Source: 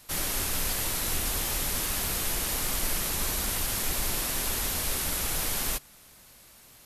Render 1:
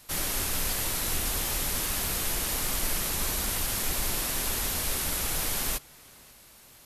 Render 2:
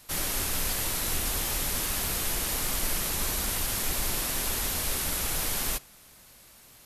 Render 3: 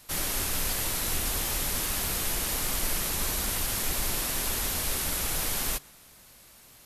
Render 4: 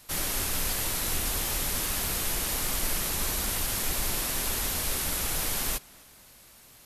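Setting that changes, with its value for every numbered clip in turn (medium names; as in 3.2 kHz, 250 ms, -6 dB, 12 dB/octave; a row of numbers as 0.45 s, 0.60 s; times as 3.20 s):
tape echo, time: 541 ms, 69 ms, 137 ms, 261 ms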